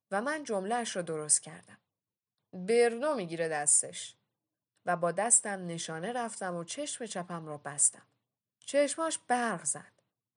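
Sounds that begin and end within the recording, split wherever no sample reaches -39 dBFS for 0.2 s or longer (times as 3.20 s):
2.55–4.08 s
4.88–7.89 s
8.68–9.81 s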